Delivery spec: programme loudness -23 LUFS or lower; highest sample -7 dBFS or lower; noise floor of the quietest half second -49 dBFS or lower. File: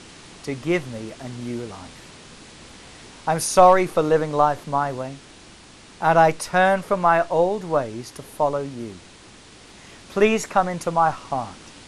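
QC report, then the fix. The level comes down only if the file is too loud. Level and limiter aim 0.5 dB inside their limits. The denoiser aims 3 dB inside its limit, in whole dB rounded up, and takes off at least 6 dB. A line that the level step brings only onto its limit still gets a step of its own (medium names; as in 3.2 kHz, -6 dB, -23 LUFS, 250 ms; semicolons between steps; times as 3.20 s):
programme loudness -21.0 LUFS: fail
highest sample -3.5 dBFS: fail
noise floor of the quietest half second -46 dBFS: fail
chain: noise reduction 6 dB, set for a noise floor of -46 dBFS; trim -2.5 dB; peak limiter -7.5 dBFS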